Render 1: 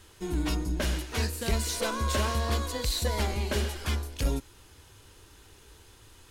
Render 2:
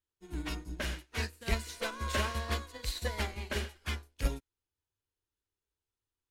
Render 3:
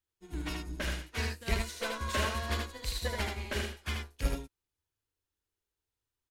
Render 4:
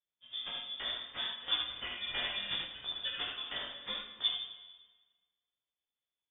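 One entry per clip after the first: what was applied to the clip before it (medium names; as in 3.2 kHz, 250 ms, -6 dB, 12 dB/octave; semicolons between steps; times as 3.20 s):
dynamic bell 2 kHz, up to +7 dB, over -48 dBFS, Q 0.89; upward expansion 2.5:1, over -47 dBFS; trim -1.5 dB
delay 77 ms -4 dB
frequency inversion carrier 3.5 kHz; chorus 0.69 Hz, delay 15.5 ms, depth 5.7 ms; plate-style reverb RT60 1.4 s, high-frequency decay 0.9×, DRR 6.5 dB; trim -3 dB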